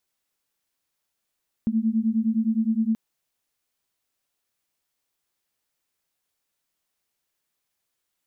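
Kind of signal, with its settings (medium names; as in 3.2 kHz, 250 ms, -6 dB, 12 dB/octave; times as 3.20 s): beating tones 218 Hz, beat 9.7 Hz, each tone -23 dBFS 1.28 s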